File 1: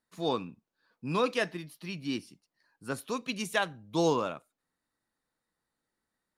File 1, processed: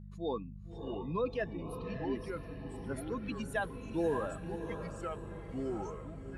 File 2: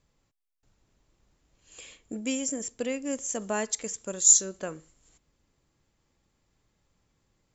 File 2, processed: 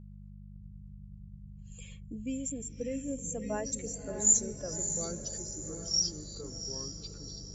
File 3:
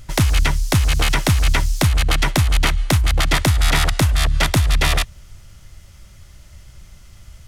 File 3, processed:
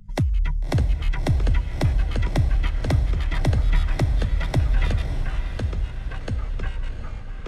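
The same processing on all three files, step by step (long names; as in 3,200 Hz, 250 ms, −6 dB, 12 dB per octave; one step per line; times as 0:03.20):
expanding power law on the bin magnitudes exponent 1.8
feedback delay with all-pass diffusion 607 ms, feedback 50%, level −8.5 dB
hum with harmonics 50 Hz, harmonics 4, −43 dBFS −3 dB per octave
delay with pitch and tempo change per echo 560 ms, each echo −4 semitones, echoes 2, each echo −6 dB
level −5.5 dB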